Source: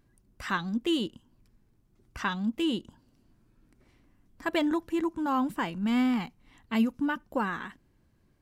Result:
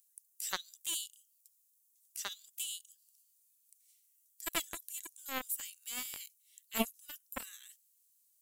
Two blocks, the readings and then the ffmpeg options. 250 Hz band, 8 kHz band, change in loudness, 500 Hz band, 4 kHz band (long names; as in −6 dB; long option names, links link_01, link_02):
−20.5 dB, can't be measured, −10.0 dB, −13.5 dB, −4.0 dB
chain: -filter_complex "[0:a]acrossover=split=3700[link_01][link_02];[link_01]acrusher=bits=2:mix=0:aa=0.5[link_03];[link_02]aexciter=amount=2.5:drive=9.1:freq=6700[link_04];[link_03][link_04]amix=inputs=2:normalize=0,volume=3dB"